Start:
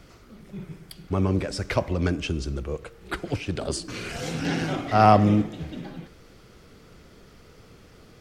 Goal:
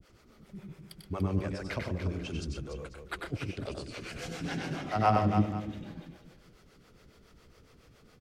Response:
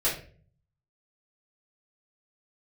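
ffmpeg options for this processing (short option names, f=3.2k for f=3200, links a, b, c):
-filter_complex "[0:a]acrossover=split=4200[a][b];[b]alimiter=level_in=7dB:limit=-24dB:level=0:latency=1:release=357,volume=-7dB[c];[a][c]amix=inputs=2:normalize=0,acrossover=split=400[d][e];[d]aeval=exprs='val(0)*(1-1/2+1/2*cos(2*PI*7.2*n/s))':c=same[f];[e]aeval=exprs='val(0)*(1-1/2-1/2*cos(2*PI*7.2*n/s))':c=same[g];[f][g]amix=inputs=2:normalize=0,aecho=1:1:95|125|290|493:0.596|0.355|0.376|0.141,volume=-5.5dB"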